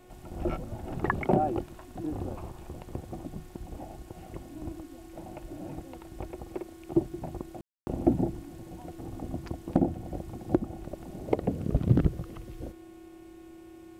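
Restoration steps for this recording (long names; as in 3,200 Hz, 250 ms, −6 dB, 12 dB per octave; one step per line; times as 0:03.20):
hum removal 362.9 Hz, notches 10
notch filter 330 Hz, Q 30
ambience match 0:07.61–0:07.87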